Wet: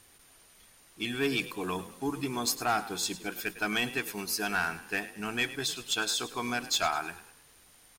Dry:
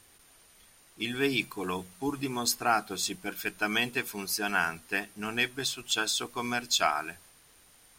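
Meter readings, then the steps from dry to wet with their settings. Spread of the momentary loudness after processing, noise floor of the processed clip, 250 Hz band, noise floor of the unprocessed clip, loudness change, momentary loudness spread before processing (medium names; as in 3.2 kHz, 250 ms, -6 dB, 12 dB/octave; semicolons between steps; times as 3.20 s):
7 LU, -59 dBFS, -0.5 dB, -60 dBFS, -1.5 dB, 8 LU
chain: saturation -19.5 dBFS, distortion -16 dB; frequency-shifting echo 104 ms, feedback 42%, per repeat +39 Hz, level -15 dB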